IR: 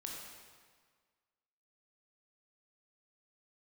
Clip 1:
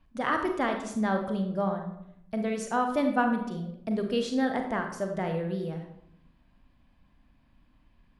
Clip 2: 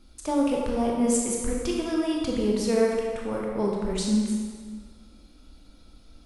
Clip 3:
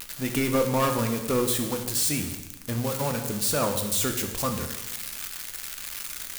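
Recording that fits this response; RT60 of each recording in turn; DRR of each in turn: 2; 0.75, 1.7, 1.1 seconds; 4.0, −2.0, 4.0 decibels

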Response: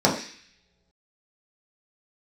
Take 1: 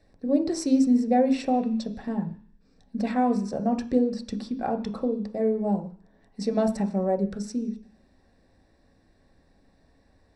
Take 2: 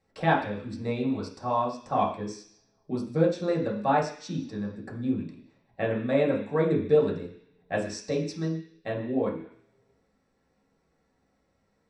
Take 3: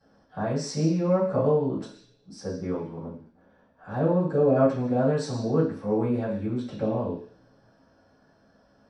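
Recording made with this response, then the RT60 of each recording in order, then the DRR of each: 2; non-exponential decay, non-exponential decay, non-exponential decay; 5.0, −4.5, −14.5 decibels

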